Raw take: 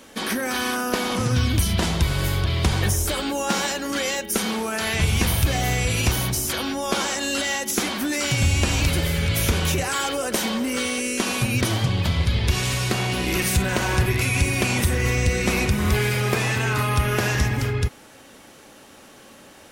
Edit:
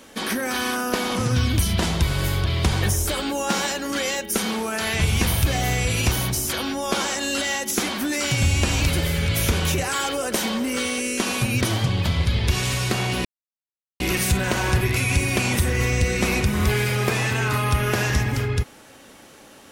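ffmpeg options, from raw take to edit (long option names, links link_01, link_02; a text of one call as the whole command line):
ffmpeg -i in.wav -filter_complex "[0:a]asplit=2[link_01][link_02];[link_01]atrim=end=13.25,asetpts=PTS-STARTPTS,afade=type=out:start_time=13.246:duration=0.004:curve=hsin,apad=pad_dur=0.75[link_03];[link_02]atrim=start=13.25,asetpts=PTS-STARTPTS,afade=type=in:duration=0.004:curve=hsin[link_04];[link_03][link_04]concat=n=2:v=0:a=1" out.wav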